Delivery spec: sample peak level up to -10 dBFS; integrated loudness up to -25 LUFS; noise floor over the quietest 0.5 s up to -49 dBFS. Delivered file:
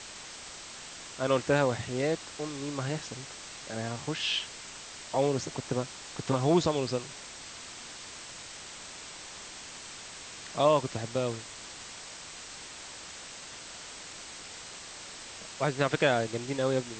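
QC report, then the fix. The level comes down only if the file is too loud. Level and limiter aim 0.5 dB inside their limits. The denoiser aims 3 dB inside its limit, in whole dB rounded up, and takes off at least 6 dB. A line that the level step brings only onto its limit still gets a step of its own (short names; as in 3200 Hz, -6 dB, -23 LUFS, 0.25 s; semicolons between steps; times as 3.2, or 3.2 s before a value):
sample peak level -11.0 dBFS: OK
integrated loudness -33.0 LUFS: OK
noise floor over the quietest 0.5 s -45 dBFS: fail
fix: denoiser 7 dB, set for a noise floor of -45 dBFS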